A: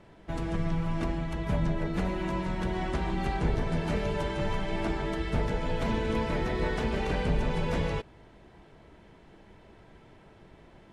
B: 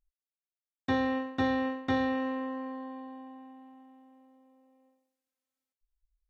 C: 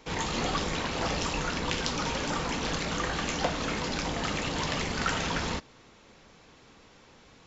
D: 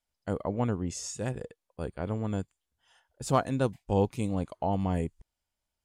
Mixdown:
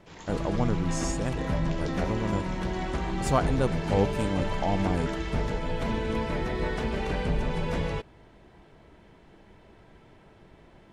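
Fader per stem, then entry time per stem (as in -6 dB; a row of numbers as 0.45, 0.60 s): 0.0, -10.0, -15.5, +1.0 dB; 0.00, 0.00, 0.00, 0.00 s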